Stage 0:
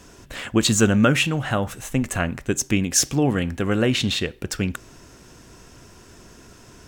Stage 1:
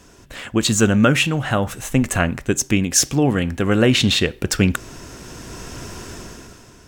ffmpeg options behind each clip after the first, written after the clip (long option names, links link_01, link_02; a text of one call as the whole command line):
ffmpeg -i in.wav -af "dynaudnorm=framelen=110:gausssize=13:maxgain=15dB,volume=-1dB" out.wav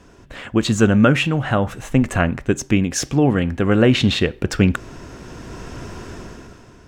ffmpeg -i in.wav -af "lowpass=frequency=2200:poles=1,volume=1.5dB" out.wav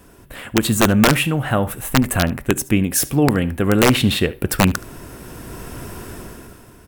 ffmpeg -i in.wav -af "aexciter=amount=11.5:drive=4.3:freq=9100,aeval=exprs='(mod(1.78*val(0)+1,2)-1)/1.78':channel_layout=same,aecho=1:1:73:0.1" out.wav